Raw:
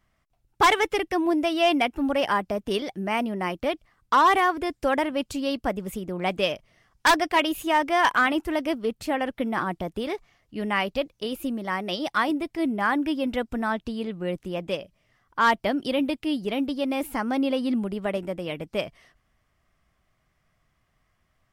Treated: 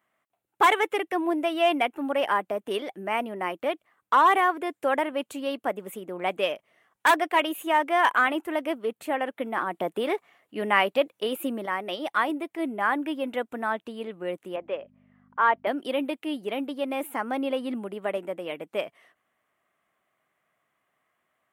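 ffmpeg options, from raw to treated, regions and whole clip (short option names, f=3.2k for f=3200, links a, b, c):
-filter_complex "[0:a]asettb=1/sr,asplit=3[a][b][c];[a]atrim=end=9.744[d];[b]atrim=start=9.74:end=11.66,asetpts=PTS-STARTPTS,afade=t=in:d=0.004:c=qsin,afade=t=out:st=1.916:d=0.004:c=qsin,bandreject=f=6.3k:w=14,acontrast=29,highpass=83[e];[c]atrim=start=11.656[f];[d][e]acrossfade=d=0.004:c1=hsin:c2=qsin[g];[g][f]acrossfade=d=0.004:c1=qsin:c2=hsin,asettb=1/sr,asplit=3[h][i][j];[h]atrim=end=14.564[k];[i]atrim=start=14.56:end=15.67,asetpts=PTS-STARTPTS,afade=t=in:d=0.004:c=qsin,afade=t=out:st=1.106:d=0.004:c=qsin,highpass=330,lowpass=2.1k,aeval=exprs='val(0)+0.00891*(sin(2*PI*50*n/s)+sin(2*PI*2*50*n/s)/2+sin(2*PI*3*50*n/s)/3+sin(2*PI*4*50*n/s)/4+sin(2*PI*5*50*n/s)/5)':c=same[l];[j]atrim=start=15.666[m];[k][l]acrossfade=d=0.004:c1=hsin:c2=qsin[n];[n][m]acrossfade=d=0.004:c1=qsin:c2=hsin,highpass=350,equalizer=f=5.1k:t=o:w=0.72:g=-15"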